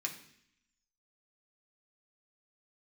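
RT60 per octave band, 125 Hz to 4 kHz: 0.80, 0.95, 0.70, 0.65, 0.85, 0.85 s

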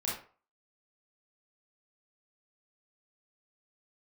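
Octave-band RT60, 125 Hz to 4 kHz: 0.35, 0.35, 0.40, 0.45, 0.35, 0.25 s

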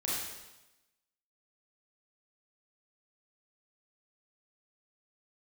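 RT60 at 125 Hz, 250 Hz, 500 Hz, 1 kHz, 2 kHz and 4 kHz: 1.0, 1.0, 1.0, 1.0, 1.0, 1.0 s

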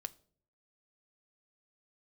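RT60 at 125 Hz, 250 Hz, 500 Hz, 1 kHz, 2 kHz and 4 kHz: 0.85, 0.70, 0.65, 0.45, 0.35, 0.35 s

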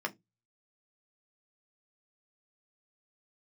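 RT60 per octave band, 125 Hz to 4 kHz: 0.45, 0.25, 0.20, 0.15, 0.15, 0.15 s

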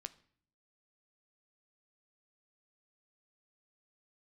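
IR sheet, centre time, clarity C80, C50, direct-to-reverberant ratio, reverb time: 3 ms, 22.0 dB, 19.0 dB, 11.5 dB, 0.55 s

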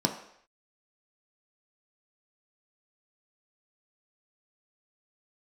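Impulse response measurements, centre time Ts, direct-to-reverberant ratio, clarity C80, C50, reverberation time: 19 ms, 2.5 dB, 11.5 dB, 9.0 dB, not exponential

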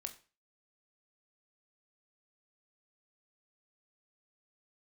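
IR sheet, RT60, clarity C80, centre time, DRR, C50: 0.35 s, 18.5 dB, 8 ms, 6.5 dB, 14.0 dB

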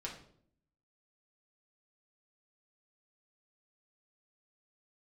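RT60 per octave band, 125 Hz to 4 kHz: 0.90, 0.90, 0.70, 0.55, 0.45, 0.45 s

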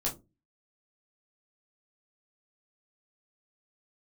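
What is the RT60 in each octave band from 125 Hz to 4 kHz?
0.45, 0.40, 0.30, 0.20, 0.15, 0.15 s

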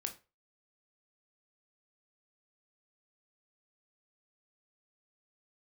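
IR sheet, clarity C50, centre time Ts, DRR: 13.5 dB, 11 ms, 5.0 dB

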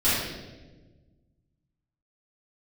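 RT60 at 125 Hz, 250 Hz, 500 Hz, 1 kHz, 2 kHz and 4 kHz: 2.2, 1.9, 1.6, 1.0, 1.0, 0.95 s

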